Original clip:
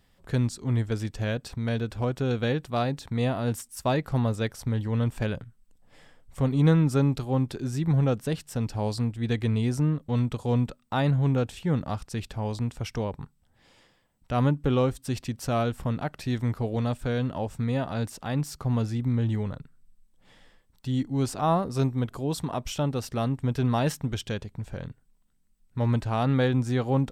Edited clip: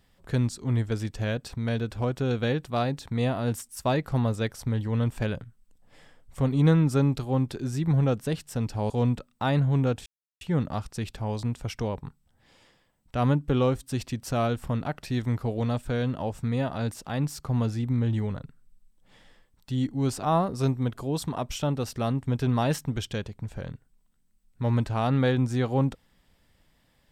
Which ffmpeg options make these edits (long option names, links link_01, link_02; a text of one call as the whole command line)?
ffmpeg -i in.wav -filter_complex "[0:a]asplit=3[link_01][link_02][link_03];[link_01]atrim=end=8.902[link_04];[link_02]atrim=start=10.408:end=11.57,asetpts=PTS-STARTPTS,afade=type=out:start_time=1.158:duration=0.004:curve=hsin,apad=pad_dur=0.35[link_05];[link_03]atrim=start=11.57,asetpts=PTS-STARTPTS,afade=type=in:duration=0.004:curve=hsin[link_06];[link_05][link_06]concat=n=2:v=0:a=1[link_07];[link_04][link_07]acrossfade=duration=0.004:curve1=hsin:curve2=hsin" out.wav